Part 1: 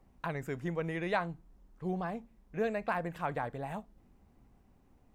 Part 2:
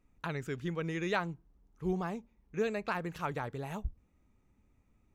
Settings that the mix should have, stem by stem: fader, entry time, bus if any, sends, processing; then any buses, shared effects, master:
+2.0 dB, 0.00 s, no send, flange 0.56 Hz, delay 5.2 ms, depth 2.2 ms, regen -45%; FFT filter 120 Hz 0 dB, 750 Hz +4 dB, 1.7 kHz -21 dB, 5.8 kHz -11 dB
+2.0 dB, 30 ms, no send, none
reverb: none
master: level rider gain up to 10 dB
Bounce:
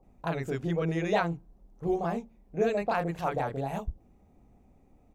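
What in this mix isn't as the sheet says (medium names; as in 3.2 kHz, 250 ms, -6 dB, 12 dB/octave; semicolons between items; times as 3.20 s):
stem 1: missing flange 0.56 Hz, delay 5.2 ms, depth 2.2 ms, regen -45%; master: missing level rider gain up to 10 dB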